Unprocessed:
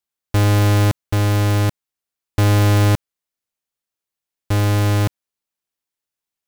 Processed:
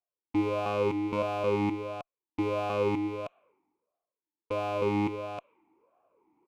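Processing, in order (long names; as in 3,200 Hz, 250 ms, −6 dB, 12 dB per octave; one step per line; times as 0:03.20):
adaptive Wiener filter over 9 samples
soft clipping −20 dBFS, distortion −19 dB
single-tap delay 313 ms −6 dB
reversed playback
upward compression, threshold −38 dBFS
reversed playback
low-pass that shuts in the quiet parts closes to 920 Hz, open at −23 dBFS
harmonic generator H 4 −7 dB, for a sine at −15 dBFS
formant filter swept between two vowels a-u 1.5 Hz
level +8 dB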